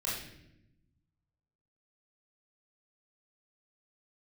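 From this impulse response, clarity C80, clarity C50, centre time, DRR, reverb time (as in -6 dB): 5.5 dB, 1.5 dB, 57 ms, -7.5 dB, not exponential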